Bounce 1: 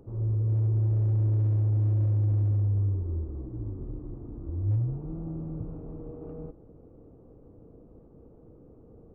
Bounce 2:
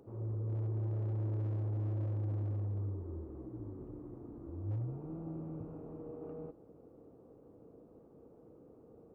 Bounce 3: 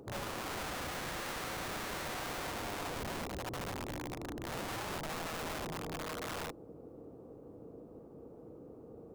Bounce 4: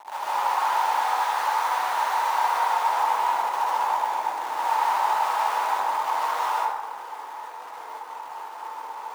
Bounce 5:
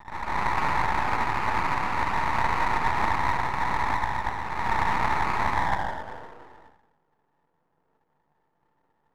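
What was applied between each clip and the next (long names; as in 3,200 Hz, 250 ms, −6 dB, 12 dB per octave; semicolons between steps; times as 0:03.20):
high-pass filter 330 Hz 6 dB per octave; level −1 dB
wrap-around overflow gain 41.5 dB; level +6.5 dB
bit-depth reduction 8 bits, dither none; high-pass with resonance 890 Hz, resonance Q 9.8; dense smooth reverb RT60 1.3 s, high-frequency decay 0.45×, pre-delay 115 ms, DRR −7.5 dB
low-pass filter sweep 1,300 Hz → 150 Hz, 0:05.40–0:07.00; half-wave rectification; highs frequency-modulated by the lows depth 0.29 ms; level −2.5 dB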